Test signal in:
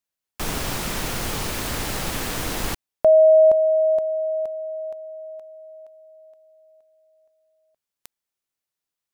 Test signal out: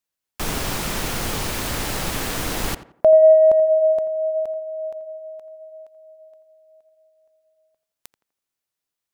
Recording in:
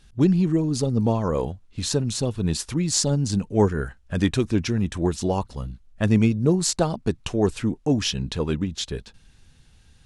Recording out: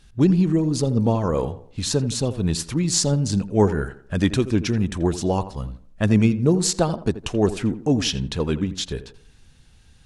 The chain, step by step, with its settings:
tape delay 84 ms, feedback 40%, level −12 dB, low-pass 1,600 Hz
level +1.5 dB

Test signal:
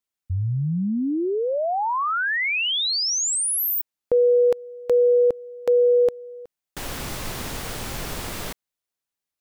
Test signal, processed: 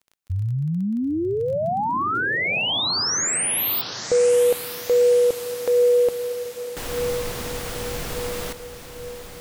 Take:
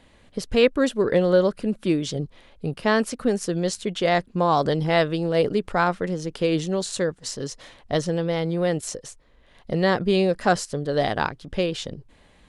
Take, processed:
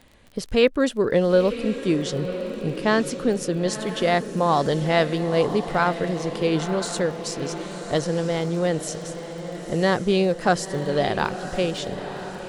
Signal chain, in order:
surface crackle 19 per second −35 dBFS
feedback delay with all-pass diffusion 981 ms, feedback 58%, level −10.5 dB

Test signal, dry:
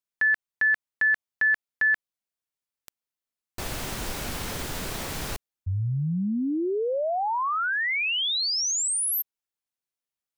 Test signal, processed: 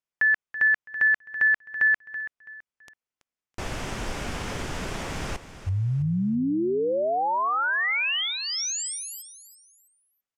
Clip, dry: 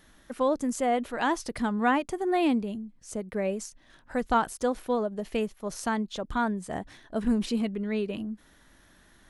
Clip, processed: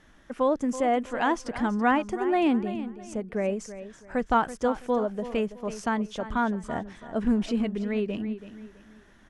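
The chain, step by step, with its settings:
low-pass filter 6,000 Hz 12 dB per octave
parametric band 4,100 Hz −7.5 dB 0.46 octaves
on a send: repeating echo 330 ms, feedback 31%, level −13 dB
on the sum: level +1.5 dB

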